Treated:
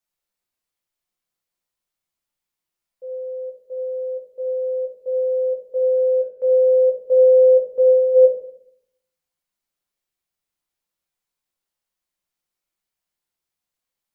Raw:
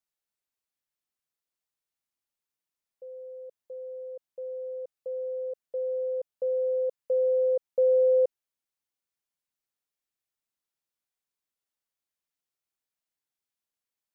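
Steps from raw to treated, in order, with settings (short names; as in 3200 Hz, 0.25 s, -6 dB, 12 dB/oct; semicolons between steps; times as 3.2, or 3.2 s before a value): 5.97–6.46 transient shaper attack -1 dB, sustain -7 dB; 7.69–8.14 bell 640 Hz -> 500 Hz -11 dB 0.24 oct; shoebox room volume 120 m³, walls mixed, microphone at 0.87 m; gain +2.5 dB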